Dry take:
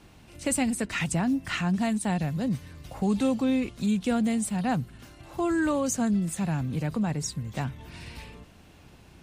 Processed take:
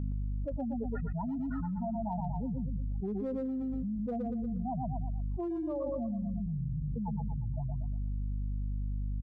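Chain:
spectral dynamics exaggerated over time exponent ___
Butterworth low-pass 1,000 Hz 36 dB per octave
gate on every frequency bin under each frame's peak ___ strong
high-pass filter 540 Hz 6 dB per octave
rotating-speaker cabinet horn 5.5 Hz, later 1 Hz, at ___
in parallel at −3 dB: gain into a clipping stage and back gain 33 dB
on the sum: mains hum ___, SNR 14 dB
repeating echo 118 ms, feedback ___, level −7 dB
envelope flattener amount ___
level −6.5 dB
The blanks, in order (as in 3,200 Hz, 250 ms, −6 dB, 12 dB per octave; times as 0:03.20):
3, −20 dB, 0:02.31, 50 Hz, 32%, 100%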